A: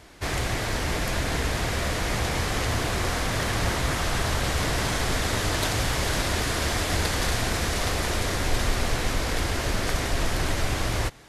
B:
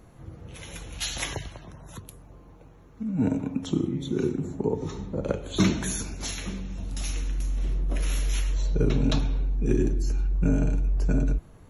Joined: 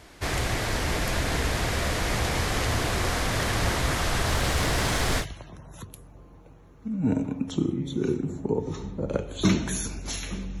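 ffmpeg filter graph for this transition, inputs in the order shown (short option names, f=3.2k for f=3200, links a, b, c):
-filter_complex "[0:a]asettb=1/sr,asplit=3[a][b][c];[a]atrim=end=4.284[d];[b]atrim=start=4.28:end=5.26,asetpts=PTS-STARTPTS,afade=t=in:d=0.004:c=qsin,afade=t=out:st=0.976:d=0.004:c=qsin,aeval=exprs='val(0)+0.5*0.01*sgn(val(0))':c=same[e];[c]atrim=start=5.256[f];[d][e]acrossfade=d=0.004:c1=hsin:c2=qsin[g];[g][f]acrossfade=d=0.004:c1=qsin:c2=hsin,apad=whole_dur=10.6,atrim=end=10.6,atrim=end=5.26,asetpts=PTS-STARTPTS[h];[1:a]atrim=start=1.33:end=6.75,asetpts=PTS-STARTPTS[i];[h][i]acrossfade=d=0.08:c1=tri:c2=tri"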